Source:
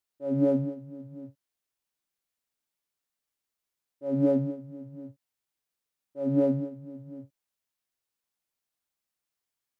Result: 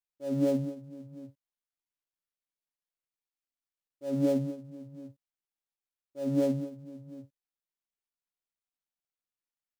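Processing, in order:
gap after every zero crossing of 0.088 ms
level −3 dB

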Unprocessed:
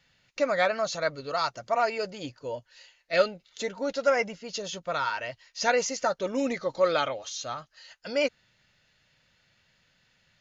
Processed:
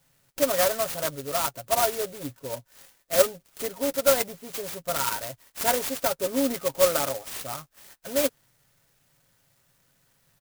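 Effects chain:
comb filter 7.3 ms, depth 57%
converter with an unsteady clock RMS 0.12 ms

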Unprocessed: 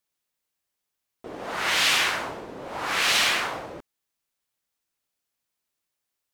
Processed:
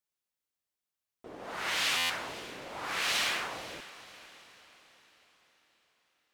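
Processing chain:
on a send: feedback delay with all-pass diffusion 487 ms, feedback 48%, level −15.5 dB
on the sum: buffer that repeats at 0:01.97, samples 512, times 10
level −8.5 dB

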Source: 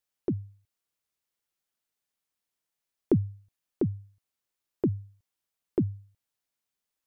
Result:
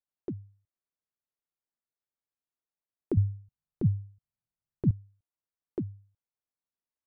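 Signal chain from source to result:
adaptive Wiener filter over 15 samples
0:03.17–0:04.91: low shelf with overshoot 220 Hz +11.5 dB, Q 1.5
level −7 dB

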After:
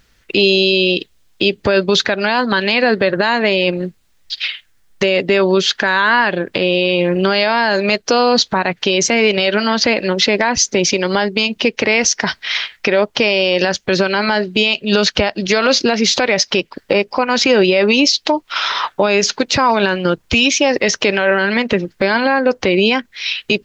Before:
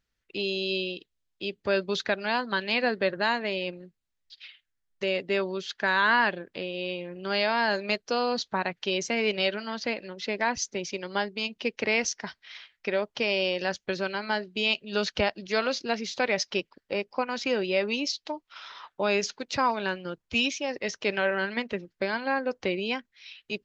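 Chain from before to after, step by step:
downward compressor 2.5 to 1, threshold −35 dBFS, peak gain reduction 11.5 dB
boost into a limiter +27.5 dB
level −2 dB

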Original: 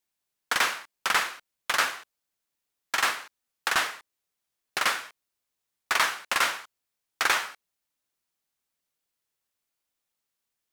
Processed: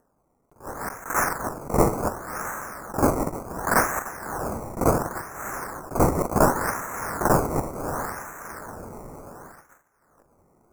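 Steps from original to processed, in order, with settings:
feedback delay that plays each chunk backwards 149 ms, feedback 43%, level −9.5 dB
0:00.57–0:01.13: downward compressor 3 to 1, threshold −34 dBFS, peak gain reduction 11 dB
feedback delay with all-pass diffusion 689 ms, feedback 45%, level −10.5 dB
sample-and-hold swept by an LFO 18×, swing 100% 0.69 Hz
Butterworth band-reject 3,300 Hz, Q 0.61
noise gate −54 dBFS, range −37 dB
upward compression, threshold −44 dBFS
level that may rise only so fast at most 200 dB per second
level +8 dB

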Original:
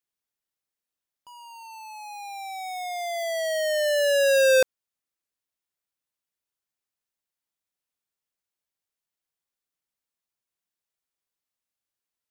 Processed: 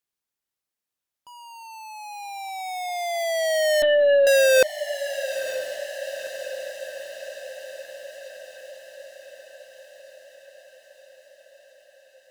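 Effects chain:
harmonic generator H 5 −18 dB, 7 −19 dB, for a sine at −16 dBFS
feedback delay with all-pass diffusion 945 ms, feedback 65%, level −12 dB
0:03.82–0:04.27: linear-prediction vocoder at 8 kHz pitch kept
level +3 dB

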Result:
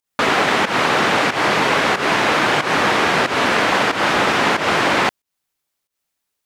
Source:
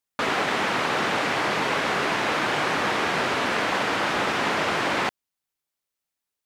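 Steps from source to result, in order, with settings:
fake sidechain pumping 92 BPM, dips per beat 1, −13 dB, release 171 ms
level +8 dB

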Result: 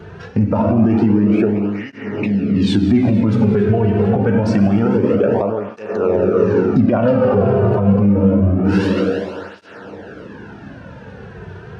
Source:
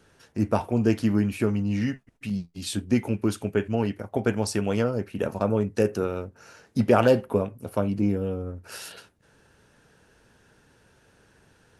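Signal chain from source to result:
head-to-tape spacing loss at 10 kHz 36 dB
dense smooth reverb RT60 3.2 s, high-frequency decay 0.75×, DRR 3.5 dB
downward compressor 4 to 1, threshold −35 dBFS, peak gain reduction 17 dB
on a send: feedback echo with a high-pass in the loop 449 ms, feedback 71%, level −22 dB
on the sum: boost into a limiter +30 dB
through-zero flanger with one copy inverted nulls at 0.26 Hz, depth 3.8 ms
level −2.5 dB

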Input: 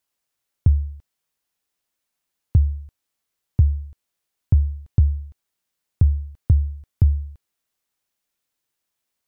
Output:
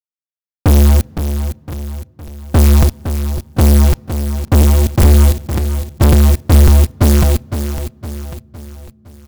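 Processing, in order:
gate on every frequency bin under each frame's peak −15 dB strong
0:04.62–0:05.02: high-pass filter 62 Hz 6 dB per octave
in parallel at 0 dB: downward compressor, threshold −26 dBFS, peak gain reduction 14 dB
on the sum: asymmetric clip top −18.5 dBFS, bottom −11.5 dBFS
multi-voice chorus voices 6, 1.5 Hz, delay 11 ms, depth 3 ms
noise that follows the level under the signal 22 dB
fuzz pedal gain 44 dB, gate −39 dBFS
repeating echo 511 ms, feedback 46%, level −9.5 dB
on a send at −24 dB: convolution reverb RT60 3.5 s, pre-delay 3 ms
on the sum: regular buffer underruns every 0.55 s, samples 256, repeat, from 0:00.62
level +6.5 dB

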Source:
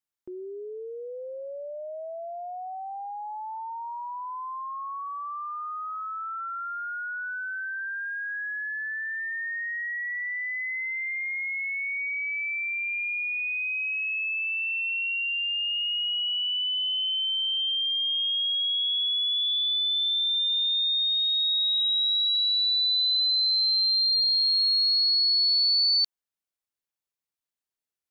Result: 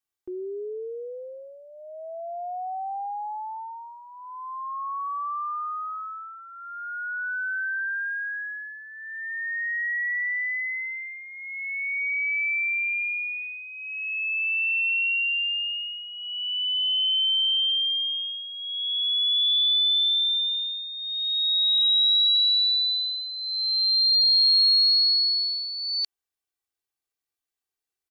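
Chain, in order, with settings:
comb filter 2.6 ms, depth 70%

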